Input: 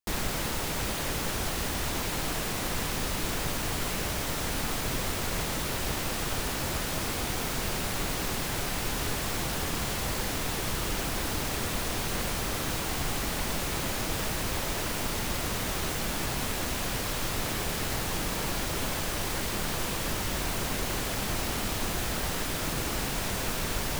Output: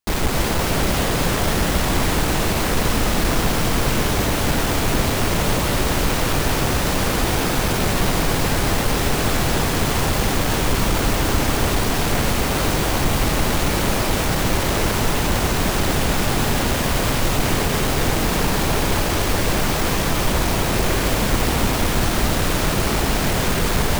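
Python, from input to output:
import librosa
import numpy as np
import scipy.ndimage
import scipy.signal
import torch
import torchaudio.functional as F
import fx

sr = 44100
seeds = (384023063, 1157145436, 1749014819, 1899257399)

y = fx.halfwave_hold(x, sr)
y = fx.echo_alternate(y, sr, ms=140, hz=1100.0, feedback_pct=78, wet_db=-3.0)
y = y * librosa.db_to_amplitude(4.5)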